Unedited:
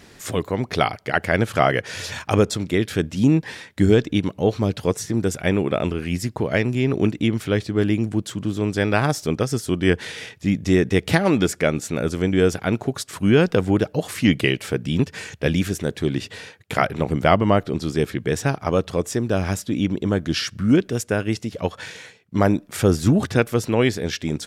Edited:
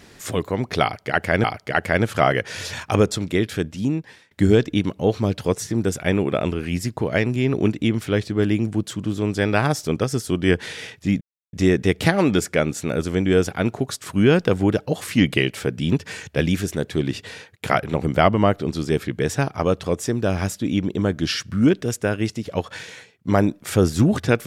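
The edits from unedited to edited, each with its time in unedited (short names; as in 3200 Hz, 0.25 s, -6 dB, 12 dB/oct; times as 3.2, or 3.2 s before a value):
0.83–1.44 loop, 2 plays
2.76–3.7 fade out linear, to -21 dB
10.6 insert silence 0.32 s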